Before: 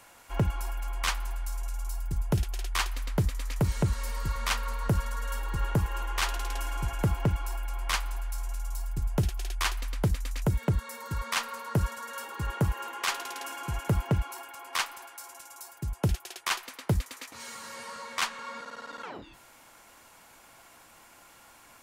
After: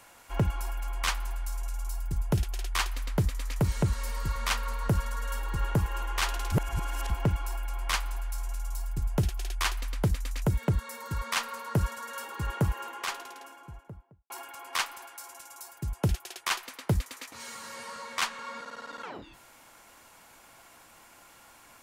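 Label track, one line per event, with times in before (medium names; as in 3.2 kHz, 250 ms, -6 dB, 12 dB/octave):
6.520000	7.100000	reverse
12.540000	14.300000	studio fade out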